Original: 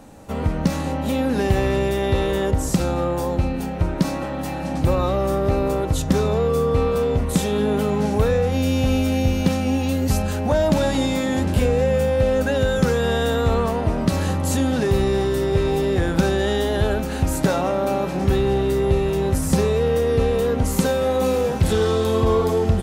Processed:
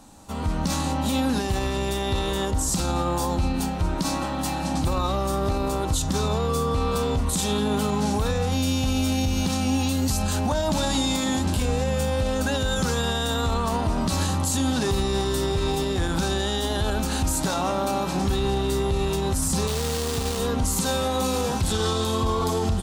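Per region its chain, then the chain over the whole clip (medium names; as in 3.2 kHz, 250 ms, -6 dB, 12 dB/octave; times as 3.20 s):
19.67–20.39 s: high-pass 52 Hz 24 dB/octave + distance through air 180 m + companded quantiser 4-bit
whole clip: level rider gain up to 9 dB; graphic EQ 125/500/1000/2000/4000/8000 Hz -5/-9/+4/-6/+5/+6 dB; peak limiter -12 dBFS; trim -3 dB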